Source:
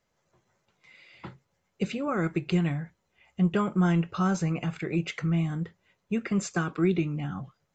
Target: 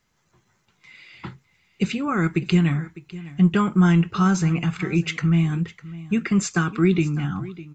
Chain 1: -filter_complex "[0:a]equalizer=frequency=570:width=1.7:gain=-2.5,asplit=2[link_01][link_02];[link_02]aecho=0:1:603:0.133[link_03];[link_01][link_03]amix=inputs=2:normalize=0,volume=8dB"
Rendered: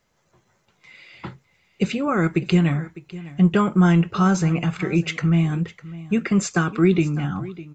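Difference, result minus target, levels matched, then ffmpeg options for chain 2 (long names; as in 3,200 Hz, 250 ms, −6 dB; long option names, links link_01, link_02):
500 Hz band +3.0 dB
-filter_complex "[0:a]equalizer=frequency=570:width=1.7:gain=-11.5,asplit=2[link_01][link_02];[link_02]aecho=0:1:603:0.133[link_03];[link_01][link_03]amix=inputs=2:normalize=0,volume=8dB"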